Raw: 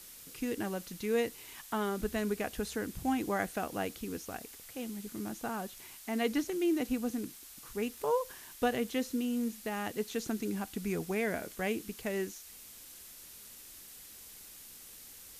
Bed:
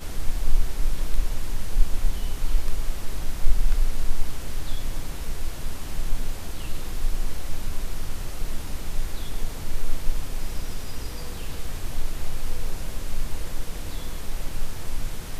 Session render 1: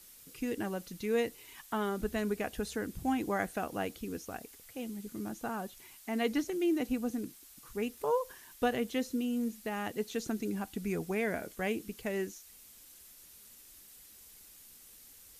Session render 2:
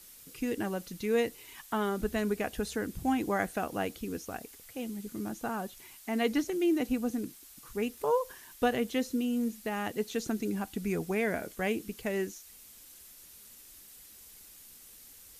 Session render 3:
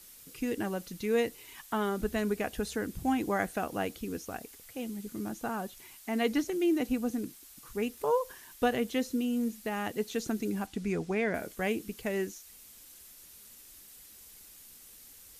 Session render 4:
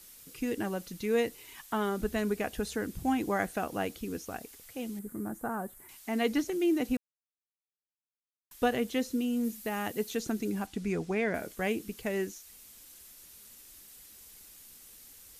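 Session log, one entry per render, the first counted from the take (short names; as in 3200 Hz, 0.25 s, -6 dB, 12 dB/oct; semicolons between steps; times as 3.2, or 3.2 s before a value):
denoiser 6 dB, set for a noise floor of -52 dBFS
gain +2.5 dB
10.66–11.33 LPF 9100 Hz -> 5300 Hz
4.99–5.89 band shelf 3900 Hz -15.5 dB; 6.97–8.51 mute; 9.44–10.15 high shelf 11000 Hz +9 dB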